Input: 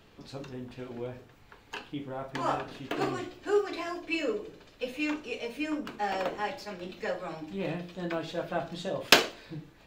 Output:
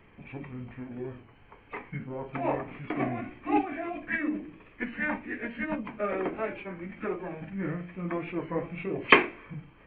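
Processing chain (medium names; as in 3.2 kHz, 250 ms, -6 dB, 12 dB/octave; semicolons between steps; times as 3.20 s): knee-point frequency compression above 3 kHz 4:1; formant shift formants -6 st; warped record 33 1/3 rpm, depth 100 cents; trim +1 dB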